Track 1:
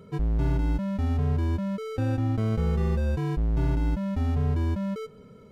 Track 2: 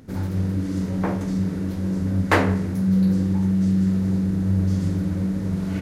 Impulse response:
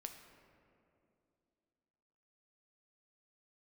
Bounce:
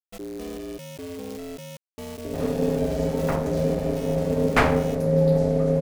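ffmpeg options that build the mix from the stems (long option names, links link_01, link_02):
-filter_complex "[0:a]aeval=exprs='val(0)*gte(abs(val(0)),0.0237)':channel_layout=same,aexciter=amount=2.9:drive=6.5:freq=2100,volume=-8dB[link_01];[1:a]aeval=exprs='val(0)+0.0282*(sin(2*PI*60*n/s)+sin(2*PI*2*60*n/s)/2+sin(2*PI*3*60*n/s)/3+sin(2*PI*4*60*n/s)/4+sin(2*PI*5*60*n/s)/5)':channel_layout=same,adelay=2250,volume=2dB[link_02];[link_01][link_02]amix=inputs=2:normalize=0,aeval=exprs='val(0)*sin(2*PI*350*n/s)':channel_layout=same"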